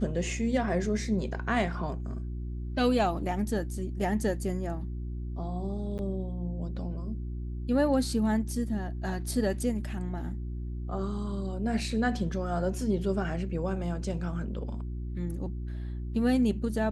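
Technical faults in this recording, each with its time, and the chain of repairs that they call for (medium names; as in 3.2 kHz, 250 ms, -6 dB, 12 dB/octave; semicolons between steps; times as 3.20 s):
hum 60 Hz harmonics 6 -35 dBFS
5.98–5.99 s: dropout 9.3 ms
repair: de-hum 60 Hz, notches 6; interpolate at 5.98 s, 9.3 ms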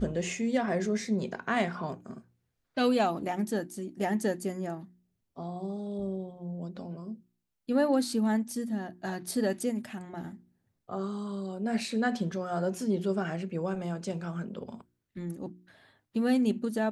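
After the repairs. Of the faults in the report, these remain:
nothing left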